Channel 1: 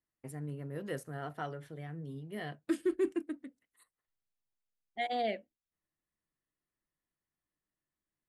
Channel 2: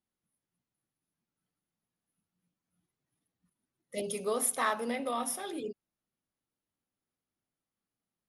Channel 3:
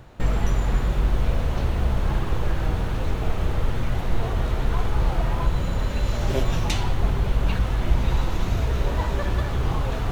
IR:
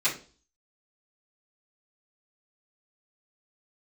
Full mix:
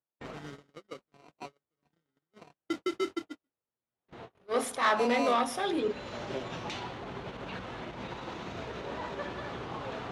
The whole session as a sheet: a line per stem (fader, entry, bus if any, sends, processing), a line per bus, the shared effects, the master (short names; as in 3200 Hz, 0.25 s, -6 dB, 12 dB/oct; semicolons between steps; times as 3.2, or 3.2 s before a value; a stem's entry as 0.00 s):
+0.5 dB, 0.00 s, bus A, no send, sample-rate reducer 1700 Hz, jitter 0%; modulation noise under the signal 15 dB
-2.0 dB, 0.20 s, no bus, no send, sample leveller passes 3; attack slew limiter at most 150 dB/s
-6.0 dB, 0.00 s, bus A, no send, auto duck -17 dB, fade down 0.75 s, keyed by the first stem
bus A: 0.0 dB, limiter -21.5 dBFS, peak gain reduction 8.5 dB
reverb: off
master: gate -34 dBFS, range -41 dB; BPF 230–4800 Hz